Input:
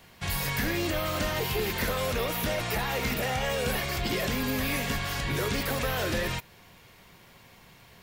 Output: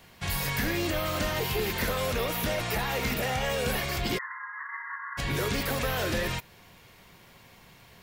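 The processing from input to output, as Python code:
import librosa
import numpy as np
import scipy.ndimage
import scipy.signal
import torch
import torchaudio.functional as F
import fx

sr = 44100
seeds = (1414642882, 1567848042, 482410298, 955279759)

y = fx.brickwall_bandpass(x, sr, low_hz=870.0, high_hz=2100.0, at=(4.17, 5.17), fade=0.02)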